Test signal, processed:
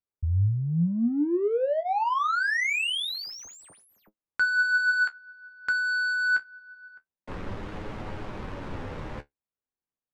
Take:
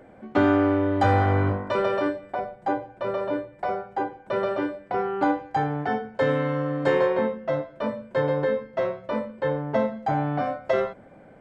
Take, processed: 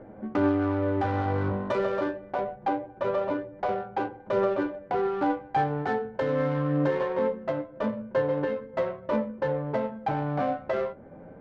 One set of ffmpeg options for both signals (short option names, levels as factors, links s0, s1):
-filter_complex "[0:a]bandreject=f=690:w=12,asplit=2[s0][s1];[s1]acompressor=threshold=0.0282:ratio=6,volume=1.06[s2];[s0][s2]amix=inputs=2:normalize=0,alimiter=limit=0.178:level=0:latency=1:release=459,adynamicsmooth=sensitivity=1.5:basefreq=1200,flanger=delay=9.4:depth=6.5:regen=46:speed=0.25:shape=sinusoidal,volume=1.33"